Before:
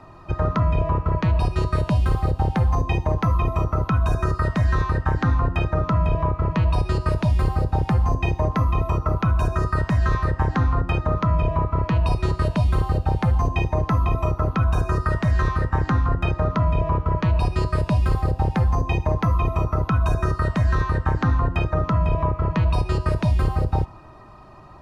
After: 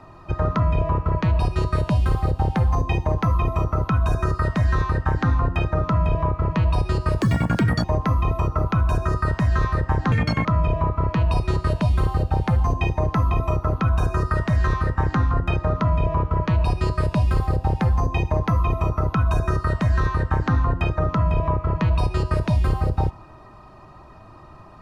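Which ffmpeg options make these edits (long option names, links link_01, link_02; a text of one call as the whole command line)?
ffmpeg -i in.wav -filter_complex "[0:a]asplit=5[link_01][link_02][link_03][link_04][link_05];[link_01]atrim=end=7.214[link_06];[link_02]atrim=start=7.21:end=8.34,asetpts=PTS-STARTPTS,asetrate=79380,aresample=44100[link_07];[link_03]atrim=start=8.336:end=10.624[link_08];[link_04]atrim=start=10.62:end=11.2,asetpts=PTS-STARTPTS,asetrate=76734,aresample=44100[link_09];[link_05]atrim=start=11.196[link_10];[link_06][link_07]acrossfade=duration=0.004:curve1=hsin:curve2=hsin[link_11];[link_11][link_08]acrossfade=duration=0.004:curve1=hsin:curve2=hsin[link_12];[link_12][link_09]acrossfade=duration=0.004:curve1=hsin:curve2=hsin[link_13];[link_13][link_10]acrossfade=duration=0.004:curve1=hsin:curve2=hsin" out.wav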